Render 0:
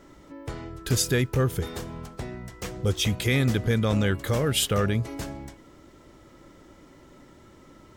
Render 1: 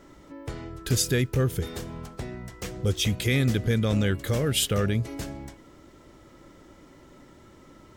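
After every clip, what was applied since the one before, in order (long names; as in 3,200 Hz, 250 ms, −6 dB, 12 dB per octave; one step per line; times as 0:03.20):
dynamic equaliser 980 Hz, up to −6 dB, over −44 dBFS, Q 1.2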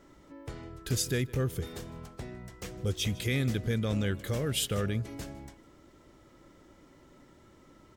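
single-tap delay 156 ms −21 dB
level −6 dB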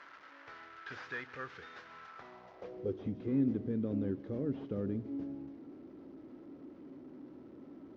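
linear delta modulator 32 kbit/s, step −42.5 dBFS
band-pass filter sweep 1,500 Hz → 290 Hz, 0:02.09–0:03.04
convolution reverb RT60 0.40 s, pre-delay 4 ms, DRR 16 dB
level +3 dB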